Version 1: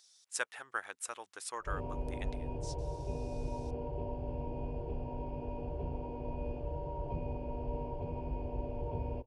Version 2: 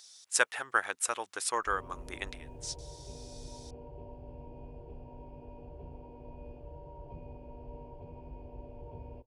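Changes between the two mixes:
speech +9.5 dB
background −8.5 dB

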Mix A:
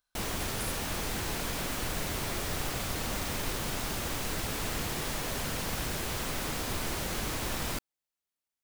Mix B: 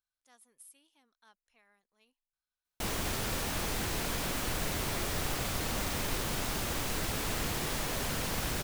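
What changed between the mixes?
speech −11.5 dB
background: entry +2.65 s

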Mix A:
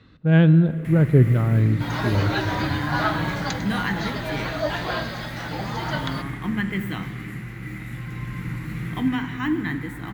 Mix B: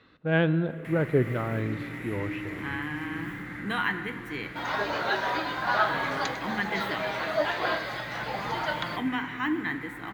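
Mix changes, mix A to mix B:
second sound: entry +2.75 s
master: add bass and treble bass −15 dB, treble −7 dB

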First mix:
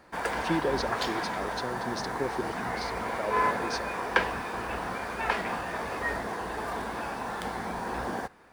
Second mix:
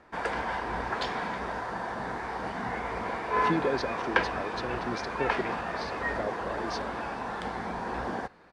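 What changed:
speech: entry +3.00 s
master: add high-frequency loss of the air 85 metres

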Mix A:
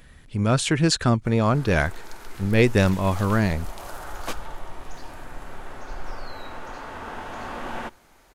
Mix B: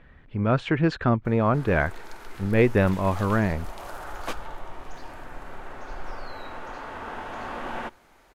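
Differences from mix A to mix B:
speech: add low-pass filter 2,200 Hz 12 dB per octave
master: add bass and treble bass −3 dB, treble −6 dB

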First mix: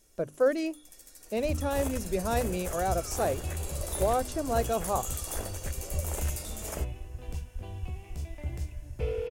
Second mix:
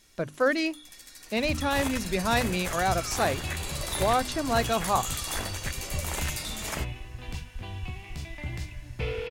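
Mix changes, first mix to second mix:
second sound: add parametric band 73 Hz −5.5 dB 0.4 octaves
master: add graphic EQ with 10 bands 125 Hz +5 dB, 250 Hz +4 dB, 500 Hz −4 dB, 1,000 Hz +6 dB, 2,000 Hz +9 dB, 4,000 Hz +11 dB

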